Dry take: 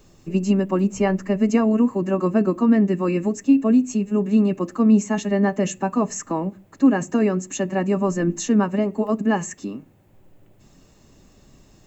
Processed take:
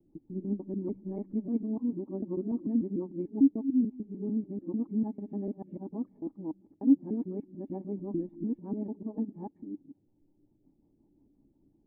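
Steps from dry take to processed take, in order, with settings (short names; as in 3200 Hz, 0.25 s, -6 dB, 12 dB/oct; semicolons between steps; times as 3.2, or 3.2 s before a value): local time reversal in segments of 0.148 s; vocal tract filter u; rotary speaker horn 5.5 Hz; gain -3.5 dB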